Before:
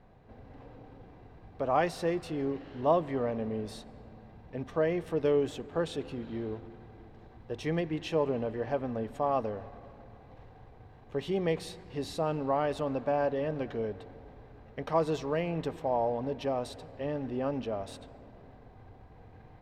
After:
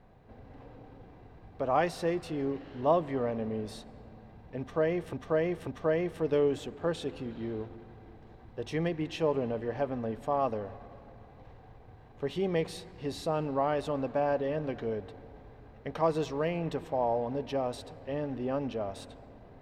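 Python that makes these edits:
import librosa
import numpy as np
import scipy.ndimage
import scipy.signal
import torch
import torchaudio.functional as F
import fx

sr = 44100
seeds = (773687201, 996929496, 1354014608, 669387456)

y = fx.edit(x, sr, fx.repeat(start_s=4.59, length_s=0.54, count=3), tone=tone)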